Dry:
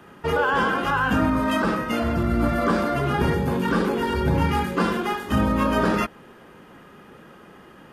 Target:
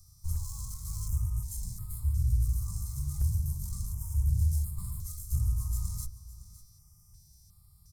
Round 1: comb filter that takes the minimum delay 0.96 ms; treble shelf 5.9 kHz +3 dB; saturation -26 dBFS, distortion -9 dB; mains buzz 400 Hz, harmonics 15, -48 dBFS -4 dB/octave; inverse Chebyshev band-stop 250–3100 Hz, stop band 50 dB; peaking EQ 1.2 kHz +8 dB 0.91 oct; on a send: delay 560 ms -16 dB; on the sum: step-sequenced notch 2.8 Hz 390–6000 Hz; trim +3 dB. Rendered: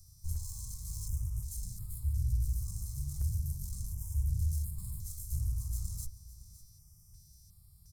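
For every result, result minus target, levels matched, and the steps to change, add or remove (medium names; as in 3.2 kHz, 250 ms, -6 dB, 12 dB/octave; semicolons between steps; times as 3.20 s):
1 kHz band -7.5 dB; saturation: distortion +8 dB
change: peaking EQ 1.2 kHz +18.5 dB 0.91 oct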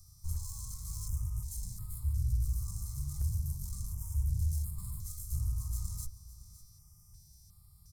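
saturation: distortion +8 dB
change: saturation -17.5 dBFS, distortion -17 dB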